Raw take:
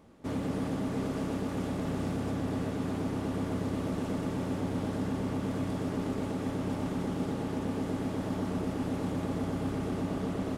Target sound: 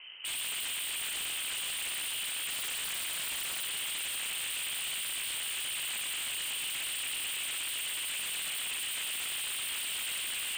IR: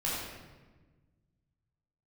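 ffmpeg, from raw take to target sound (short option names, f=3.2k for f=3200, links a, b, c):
-filter_complex "[0:a]asoftclip=type=tanh:threshold=-31dB,asettb=1/sr,asplit=3[a][b][c];[a]atrim=end=2.484[d];[b]atrim=start=2.48:end=3.65,asetpts=PTS-STARTPTS,afade=t=in:d=0.004:c=qsin,afade=t=out:st=1.166:d=0.004:c=qsin,aecho=1:1:5.7:0.87,atrim=end_sample=51597[e];[c]atrim=start=3.646[f];[d][e]acrossfade=d=0.004:c1=hsin:c2=qsin[g];[g][f]acrossfade=d=0.004:c1=qsin:c2=hsin,asplit=2[h][i];[1:a]atrim=start_sample=2205,atrim=end_sample=3087[j];[i][j]afir=irnorm=-1:irlink=0,volume=-9.5dB[k];[h][k]amix=inputs=2:normalize=0,lowpass=f=2.7k:t=q:w=0.5098,lowpass=f=2.7k:t=q:w=0.6013,lowpass=f=2.7k:t=q:w=0.9,lowpass=f=2.7k:t=q:w=2.563,afreqshift=-3200,aeval=exprs='0.0126*(abs(mod(val(0)/0.0126+3,4)-2)-1)':c=same,volume=7dB"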